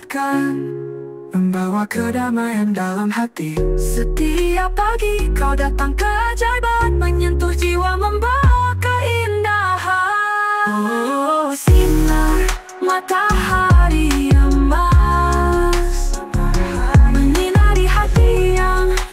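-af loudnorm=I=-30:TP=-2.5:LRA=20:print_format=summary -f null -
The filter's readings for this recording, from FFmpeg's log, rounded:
Input Integrated:    -16.6 LUFS
Input True Peak:      -2.0 dBTP
Input LRA:             4.0 LU
Input Threshold:     -26.6 LUFS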